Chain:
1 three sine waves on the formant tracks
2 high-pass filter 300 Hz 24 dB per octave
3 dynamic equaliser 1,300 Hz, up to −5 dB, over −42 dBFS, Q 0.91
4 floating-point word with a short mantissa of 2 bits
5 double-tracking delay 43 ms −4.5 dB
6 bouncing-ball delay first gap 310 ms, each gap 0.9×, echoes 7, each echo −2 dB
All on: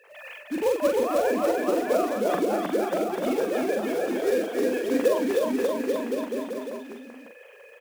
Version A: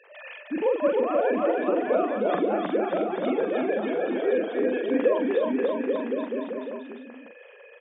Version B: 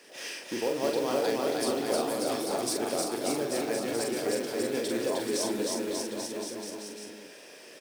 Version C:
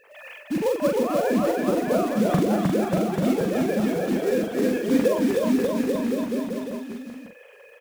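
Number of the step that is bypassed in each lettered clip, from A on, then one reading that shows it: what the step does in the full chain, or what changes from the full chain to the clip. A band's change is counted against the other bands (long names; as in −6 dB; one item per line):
4, distortion level −20 dB
1, 8 kHz band +12.5 dB
2, 250 Hz band +5.5 dB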